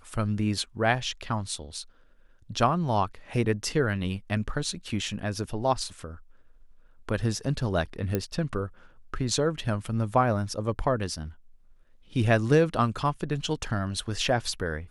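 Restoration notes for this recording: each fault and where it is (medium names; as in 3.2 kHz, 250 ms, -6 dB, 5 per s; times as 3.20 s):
8.15 s: pop -13 dBFS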